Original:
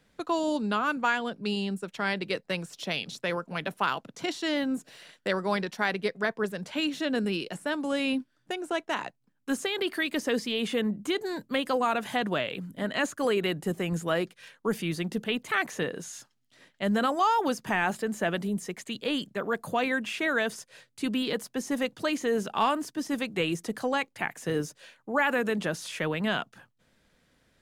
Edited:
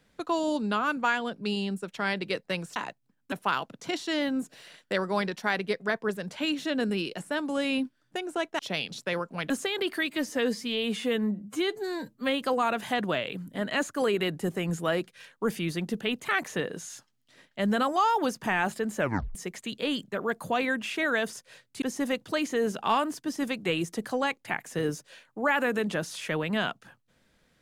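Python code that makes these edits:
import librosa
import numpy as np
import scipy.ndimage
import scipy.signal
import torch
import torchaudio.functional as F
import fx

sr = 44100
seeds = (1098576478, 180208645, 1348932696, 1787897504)

y = fx.edit(x, sr, fx.swap(start_s=2.76, length_s=0.91, other_s=8.94, other_length_s=0.56),
    fx.stretch_span(start_s=10.1, length_s=1.54, factor=1.5),
    fx.tape_stop(start_s=18.22, length_s=0.36),
    fx.cut(start_s=21.05, length_s=0.48), tone=tone)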